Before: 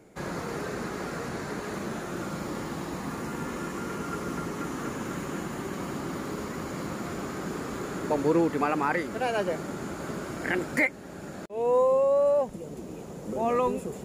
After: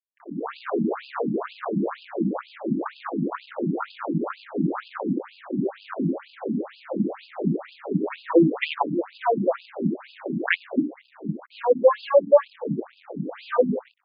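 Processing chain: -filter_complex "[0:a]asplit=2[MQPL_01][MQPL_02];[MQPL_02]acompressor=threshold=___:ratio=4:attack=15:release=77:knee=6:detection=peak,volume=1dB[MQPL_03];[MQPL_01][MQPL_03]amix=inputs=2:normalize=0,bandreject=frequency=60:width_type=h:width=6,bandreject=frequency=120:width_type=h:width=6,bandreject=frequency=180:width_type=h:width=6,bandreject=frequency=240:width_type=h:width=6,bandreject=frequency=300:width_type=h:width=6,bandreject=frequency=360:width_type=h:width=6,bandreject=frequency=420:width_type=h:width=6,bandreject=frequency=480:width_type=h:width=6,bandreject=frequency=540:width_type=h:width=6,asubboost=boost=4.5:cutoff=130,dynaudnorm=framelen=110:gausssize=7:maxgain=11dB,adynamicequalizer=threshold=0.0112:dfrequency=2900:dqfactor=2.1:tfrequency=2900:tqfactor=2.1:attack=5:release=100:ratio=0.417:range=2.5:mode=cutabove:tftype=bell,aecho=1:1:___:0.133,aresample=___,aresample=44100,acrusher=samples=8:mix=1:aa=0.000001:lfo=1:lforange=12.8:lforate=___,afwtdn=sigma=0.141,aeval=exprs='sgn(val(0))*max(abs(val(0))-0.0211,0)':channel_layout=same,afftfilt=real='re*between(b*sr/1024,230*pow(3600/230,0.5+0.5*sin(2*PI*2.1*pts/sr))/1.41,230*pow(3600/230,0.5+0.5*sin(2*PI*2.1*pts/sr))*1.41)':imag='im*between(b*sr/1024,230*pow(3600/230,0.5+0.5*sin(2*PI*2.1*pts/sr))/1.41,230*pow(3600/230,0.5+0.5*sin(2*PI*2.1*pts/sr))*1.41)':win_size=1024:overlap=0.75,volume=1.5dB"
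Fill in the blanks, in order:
-33dB, 142, 11025, 2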